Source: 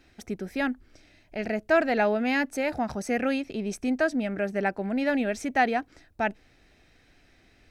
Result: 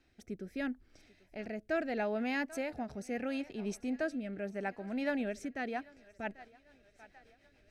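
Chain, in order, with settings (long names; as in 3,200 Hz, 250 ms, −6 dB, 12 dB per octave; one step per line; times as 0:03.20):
feedback echo with a high-pass in the loop 790 ms, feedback 60%, high-pass 340 Hz, level −21 dB
rotating-speaker cabinet horn 0.75 Hz, later 7 Hz, at 0:05.47
amplitude modulation by smooth noise, depth 50%
level −5 dB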